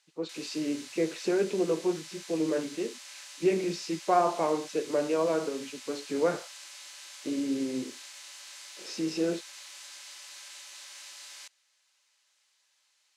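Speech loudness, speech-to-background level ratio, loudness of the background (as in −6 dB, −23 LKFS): −30.5 LKFS, 13.5 dB, −44.0 LKFS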